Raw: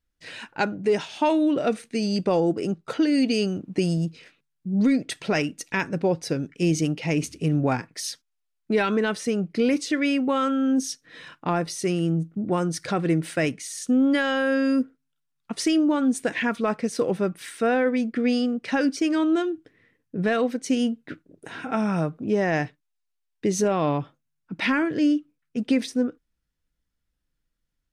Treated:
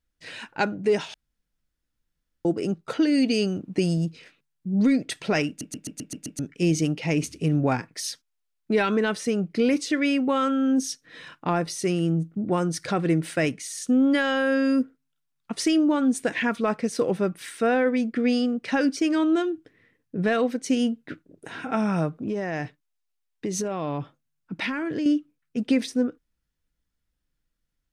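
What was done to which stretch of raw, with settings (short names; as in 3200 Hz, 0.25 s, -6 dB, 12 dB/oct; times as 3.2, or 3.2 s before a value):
1.14–2.45 room tone
5.48 stutter in place 0.13 s, 7 plays
22.19–25.06 compressor, threshold -24 dBFS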